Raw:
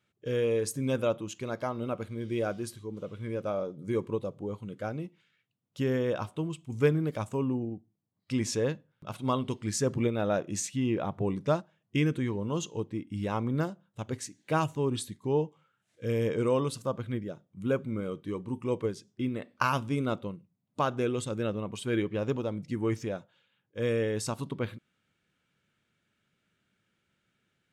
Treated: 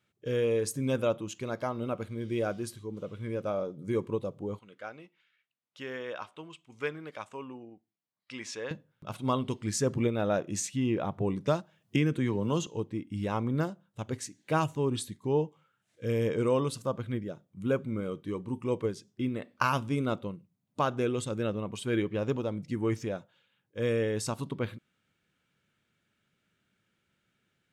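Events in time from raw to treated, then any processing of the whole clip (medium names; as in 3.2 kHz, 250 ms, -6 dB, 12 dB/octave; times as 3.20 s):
4.59–8.71 s: band-pass filter 2 kHz, Q 0.67
11.47–12.67 s: three bands compressed up and down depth 70%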